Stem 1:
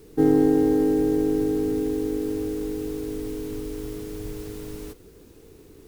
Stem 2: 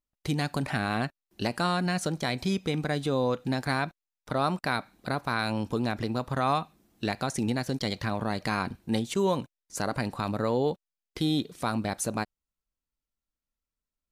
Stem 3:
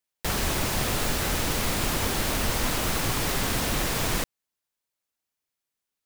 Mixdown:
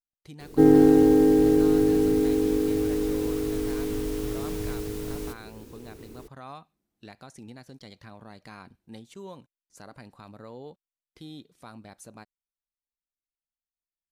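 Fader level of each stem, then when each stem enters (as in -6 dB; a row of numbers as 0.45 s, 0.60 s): +2.5 dB, -16.5 dB, -19.0 dB; 0.40 s, 0.00 s, 0.50 s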